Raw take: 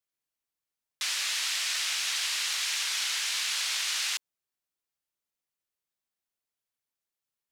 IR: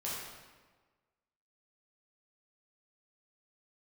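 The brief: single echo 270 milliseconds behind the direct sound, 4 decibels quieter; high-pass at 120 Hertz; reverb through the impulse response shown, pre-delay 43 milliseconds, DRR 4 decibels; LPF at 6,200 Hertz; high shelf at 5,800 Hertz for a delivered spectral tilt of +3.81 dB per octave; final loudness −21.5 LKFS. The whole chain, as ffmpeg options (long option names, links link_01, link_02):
-filter_complex "[0:a]highpass=120,lowpass=6200,highshelf=frequency=5800:gain=6.5,aecho=1:1:270:0.631,asplit=2[link_01][link_02];[1:a]atrim=start_sample=2205,adelay=43[link_03];[link_02][link_03]afir=irnorm=-1:irlink=0,volume=-7dB[link_04];[link_01][link_04]amix=inputs=2:normalize=0,volume=3dB"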